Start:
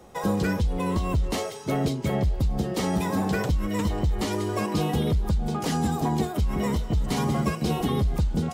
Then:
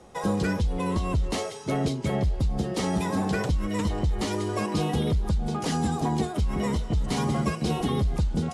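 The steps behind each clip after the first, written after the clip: Chebyshev low-pass 11 kHz, order 4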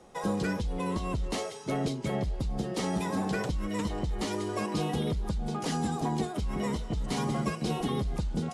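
peaking EQ 80 Hz -8 dB 0.88 oct; trim -3.5 dB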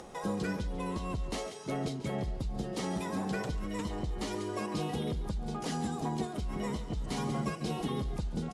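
upward compressor, threshold -35 dBFS; echo from a far wall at 24 m, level -13 dB; trim -4 dB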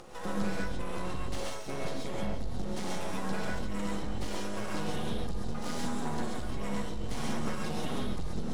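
half-wave rectifier; gated-style reverb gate 160 ms rising, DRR -2.5 dB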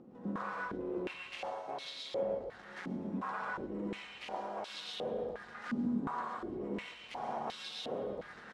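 delay 113 ms -6 dB; step-sequenced band-pass 2.8 Hz 240–3700 Hz; trim +7 dB

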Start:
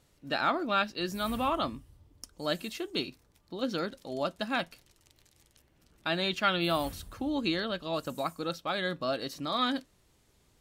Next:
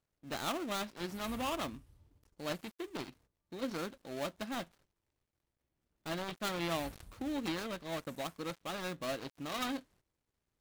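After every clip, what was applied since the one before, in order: dead-time distortion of 0.26 ms; gate -60 dBFS, range -12 dB; trim -5.5 dB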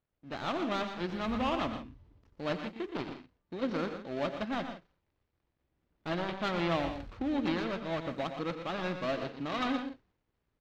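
distance through air 210 m; multi-tap echo 88/119/123/162 ms -15/-9.5/-18/-14.5 dB; level rider gain up to 5.5 dB

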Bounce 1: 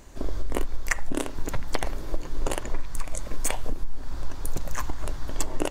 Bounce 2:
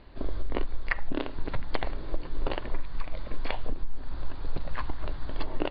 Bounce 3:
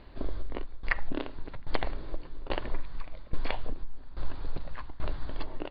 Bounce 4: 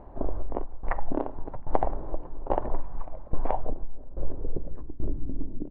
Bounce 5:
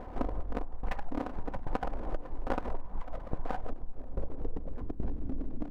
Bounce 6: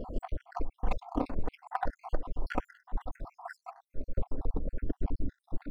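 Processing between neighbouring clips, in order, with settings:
steep low-pass 4.6 kHz 96 dB/octave; trim -2.5 dB
tremolo saw down 1.2 Hz, depth 85%; trim +1 dB
low-pass sweep 810 Hz -> 220 Hz, 3.49–5.69 s; trim +3.5 dB
comb filter that takes the minimum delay 4 ms; compression 6:1, threshold -32 dBFS, peak gain reduction 14.5 dB; trim +4.5 dB
random holes in the spectrogram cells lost 68%; in parallel at -7.5 dB: saturation -32.5 dBFS, distortion -10 dB; on the sum: trim +3 dB

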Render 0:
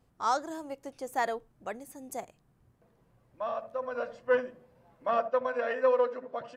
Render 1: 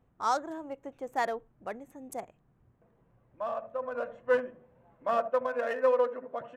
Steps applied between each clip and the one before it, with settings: local Wiener filter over 9 samples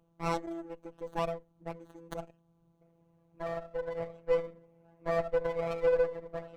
single-diode clipper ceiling -28.5 dBFS; robot voice 167 Hz; sliding maximum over 17 samples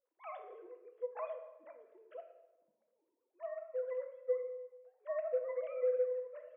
formants replaced by sine waves; compression, threshold -29 dBFS, peak gain reduction 9.5 dB; simulated room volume 500 m³, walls mixed, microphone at 0.68 m; trim -3 dB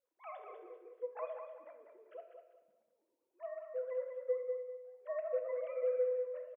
feedback delay 195 ms, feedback 30%, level -7 dB; trim -1.5 dB

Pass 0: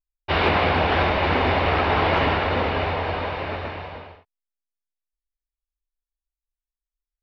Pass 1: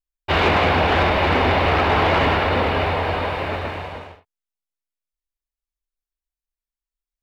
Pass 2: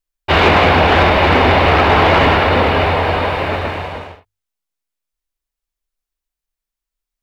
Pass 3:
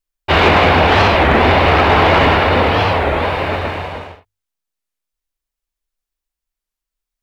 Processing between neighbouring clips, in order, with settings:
waveshaping leveller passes 1
hum notches 50/100 Hz; trim +6.5 dB
warped record 33 1/3 rpm, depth 250 cents

